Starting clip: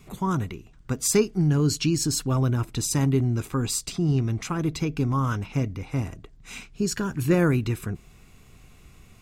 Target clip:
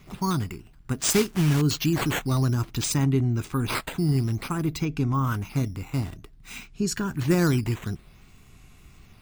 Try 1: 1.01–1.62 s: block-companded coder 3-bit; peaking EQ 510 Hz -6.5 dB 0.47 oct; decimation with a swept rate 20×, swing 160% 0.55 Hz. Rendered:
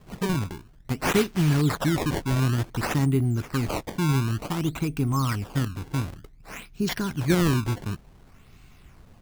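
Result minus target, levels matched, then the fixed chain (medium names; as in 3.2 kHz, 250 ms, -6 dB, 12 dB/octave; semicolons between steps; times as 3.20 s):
decimation with a swept rate: distortion +5 dB
1.01–1.62 s: block-companded coder 3-bit; peaking EQ 510 Hz -6.5 dB 0.47 oct; decimation with a swept rate 5×, swing 160% 0.55 Hz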